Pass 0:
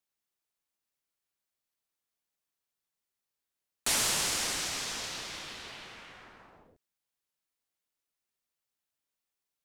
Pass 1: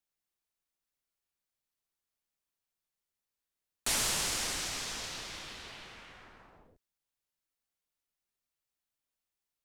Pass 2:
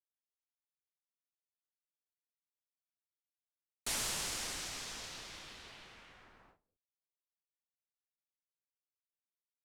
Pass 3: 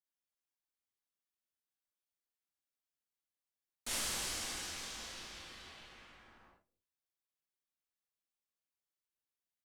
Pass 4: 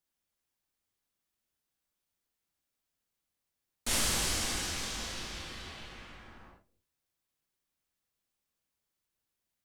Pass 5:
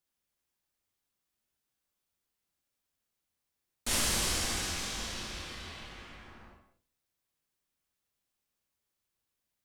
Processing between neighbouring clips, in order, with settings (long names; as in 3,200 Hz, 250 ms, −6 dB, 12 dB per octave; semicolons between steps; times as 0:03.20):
low-shelf EQ 70 Hz +9.5 dB; level −2.5 dB
noise gate with hold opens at −46 dBFS; level −6 dB
reverb whose tail is shaped and stops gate 90 ms flat, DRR −3 dB; level −5.5 dB
low-shelf EQ 270 Hz +8 dB; level +7 dB
reverb whose tail is shaped and stops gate 210 ms flat, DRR 9 dB